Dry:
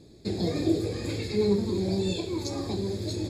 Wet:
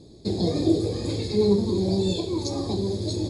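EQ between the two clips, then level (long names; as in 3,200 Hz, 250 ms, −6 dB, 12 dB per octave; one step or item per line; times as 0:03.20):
linear-phase brick-wall low-pass 11,000 Hz
flat-topped bell 1,900 Hz −9 dB 1.3 octaves
notch filter 7,400 Hz, Q 13
+4.0 dB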